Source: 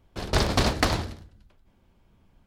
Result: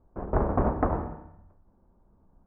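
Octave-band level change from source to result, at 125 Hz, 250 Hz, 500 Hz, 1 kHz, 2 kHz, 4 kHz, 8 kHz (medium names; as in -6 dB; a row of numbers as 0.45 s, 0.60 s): -3.0 dB, -0.5 dB, 0.0 dB, -1.0 dB, -13.5 dB, under -40 dB, under -40 dB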